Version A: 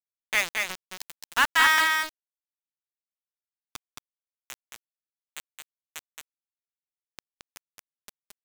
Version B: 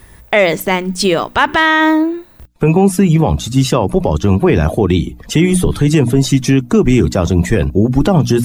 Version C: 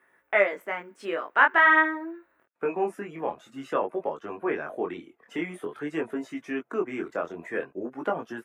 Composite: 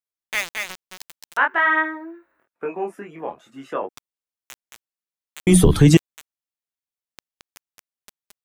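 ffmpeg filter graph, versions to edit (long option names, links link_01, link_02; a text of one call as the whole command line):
ffmpeg -i take0.wav -i take1.wav -i take2.wav -filter_complex "[0:a]asplit=3[link_01][link_02][link_03];[link_01]atrim=end=1.372[link_04];[2:a]atrim=start=1.368:end=3.892[link_05];[link_02]atrim=start=3.888:end=5.472[link_06];[1:a]atrim=start=5.468:end=5.972[link_07];[link_03]atrim=start=5.968[link_08];[link_04][link_05]acrossfade=duration=0.004:curve1=hsin:curve2=hsin[link_09];[link_09][link_06]acrossfade=duration=0.004:curve1=hsin:curve2=hsin[link_10];[link_10][link_07]acrossfade=duration=0.004:curve1=hsin:curve2=hsin[link_11];[link_11][link_08]acrossfade=duration=0.004:curve1=hsin:curve2=hsin" out.wav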